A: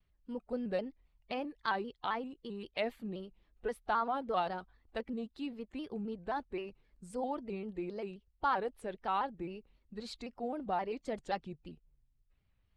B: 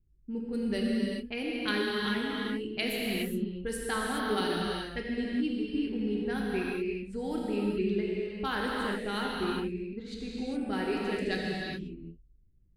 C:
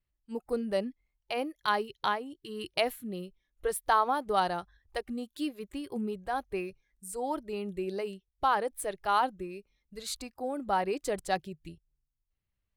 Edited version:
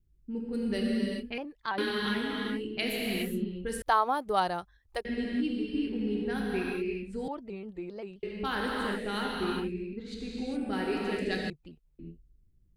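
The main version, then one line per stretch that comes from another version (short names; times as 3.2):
B
1.38–1.78 from A
3.82–5.05 from C
7.28–8.23 from A
11.5–11.99 from A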